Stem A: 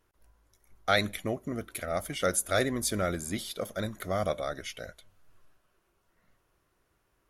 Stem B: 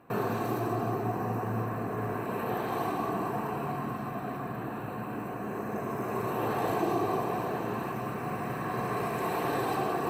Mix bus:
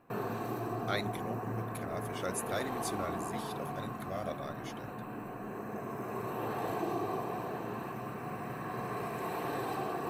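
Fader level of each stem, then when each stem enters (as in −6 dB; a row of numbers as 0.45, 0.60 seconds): −10.0, −6.0 decibels; 0.00, 0.00 seconds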